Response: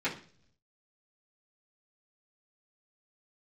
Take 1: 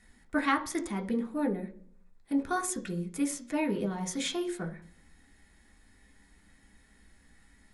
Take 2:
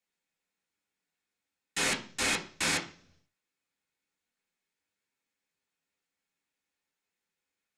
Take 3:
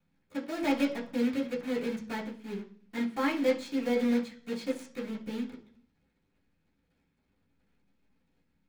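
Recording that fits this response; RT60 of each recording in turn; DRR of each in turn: 3; 0.50 s, non-exponential decay, non-exponential decay; 2.0, −3.5, −11.0 decibels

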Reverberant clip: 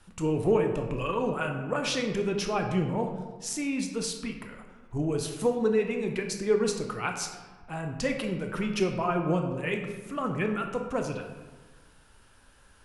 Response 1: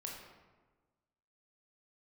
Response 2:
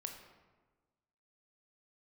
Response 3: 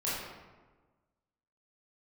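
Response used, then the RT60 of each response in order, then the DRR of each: 2; 1.3, 1.3, 1.3 seconds; −1.5, 3.5, −9.5 decibels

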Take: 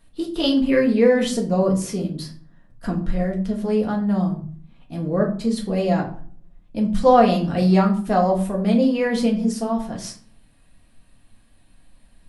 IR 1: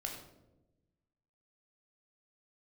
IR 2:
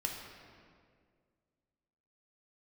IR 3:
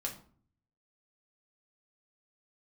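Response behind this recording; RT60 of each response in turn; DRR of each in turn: 3; 1.0, 2.0, 0.50 seconds; 0.5, 0.0, −0.5 decibels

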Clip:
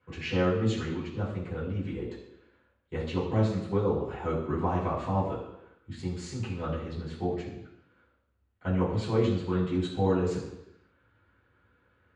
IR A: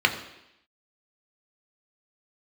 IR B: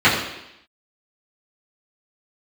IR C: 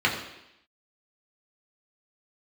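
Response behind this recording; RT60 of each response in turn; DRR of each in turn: B; 0.85, 0.85, 0.85 seconds; 3.5, −11.5, −3.0 decibels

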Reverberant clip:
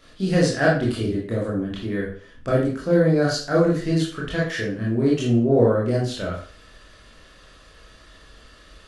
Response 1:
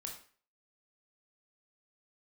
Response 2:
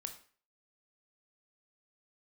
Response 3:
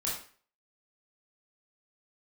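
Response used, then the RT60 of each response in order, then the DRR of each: 3; 0.45, 0.45, 0.45 seconds; 1.0, 6.0, −5.5 decibels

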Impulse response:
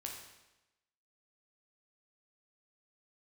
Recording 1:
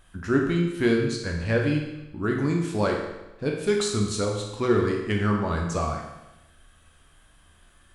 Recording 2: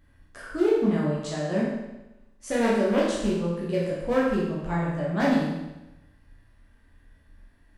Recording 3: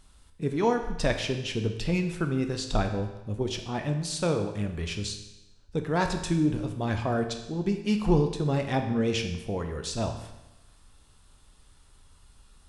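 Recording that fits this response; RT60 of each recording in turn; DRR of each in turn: 1; 1.0, 1.0, 1.0 seconds; 0.0, −7.0, 5.0 decibels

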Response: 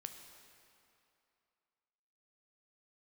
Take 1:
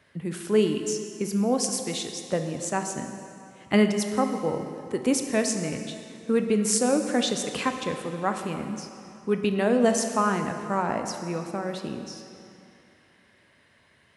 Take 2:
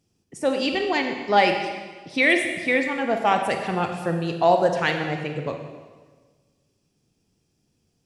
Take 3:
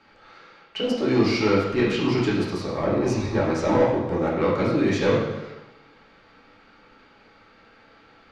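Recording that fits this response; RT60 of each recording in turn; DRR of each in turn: 1; 2.7, 1.4, 1.0 seconds; 5.5, 4.0, −7.5 decibels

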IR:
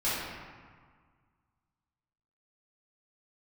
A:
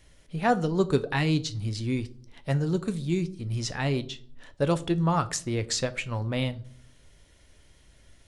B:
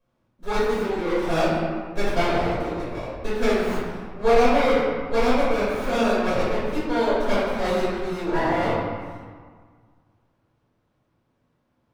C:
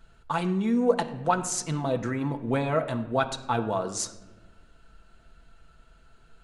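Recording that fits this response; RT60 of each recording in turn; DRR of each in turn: B; 0.55, 1.7, 1.1 seconds; 11.5, −12.0, 4.0 decibels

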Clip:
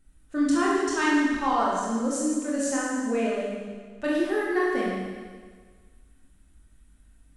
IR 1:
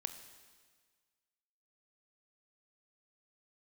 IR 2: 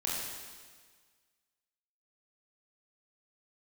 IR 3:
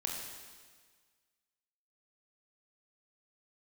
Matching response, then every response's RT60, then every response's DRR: 2; 1.6, 1.6, 1.6 seconds; 8.5, −5.5, −1.0 decibels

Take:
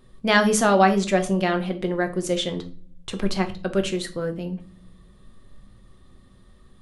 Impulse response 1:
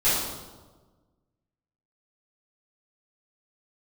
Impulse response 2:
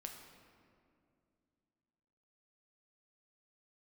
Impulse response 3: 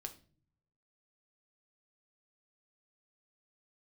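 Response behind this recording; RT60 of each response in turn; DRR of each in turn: 3; 1.3 s, 2.4 s, non-exponential decay; −13.5, 2.5, 5.5 decibels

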